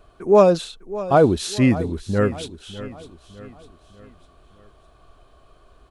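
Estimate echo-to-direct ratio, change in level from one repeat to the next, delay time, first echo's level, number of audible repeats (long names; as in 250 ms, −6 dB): −14.5 dB, −7.0 dB, 603 ms, −15.5 dB, 3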